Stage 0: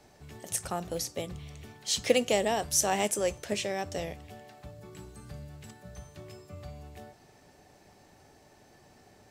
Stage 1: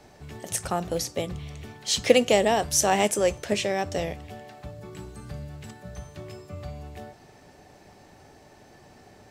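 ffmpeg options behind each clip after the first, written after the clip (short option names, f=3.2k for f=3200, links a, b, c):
-af "highshelf=f=5.8k:g=-5.5,volume=6.5dB"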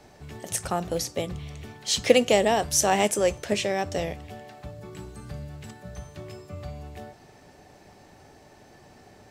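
-af anull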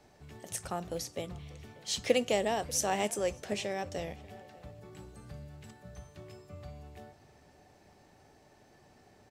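-filter_complex "[0:a]asplit=2[a][b];[b]adelay=590,lowpass=f=2.2k:p=1,volume=-20.5dB,asplit=2[c][d];[d]adelay=590,lowpass=f=2.2k:p=1,volume=0.38,asplit=2[e][f];[f]adelay=590,lowpass=f=2.2k:p=1,volume=0.38[g];[a][c][e][g]amix=inputs=4:normalize=0,volume=-9dB"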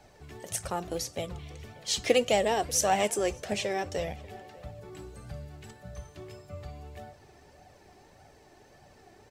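-af "flanger=delay=1.2:depth=1.8:regen=38:speed=1.7:shape=triangular,volume=8.5dB"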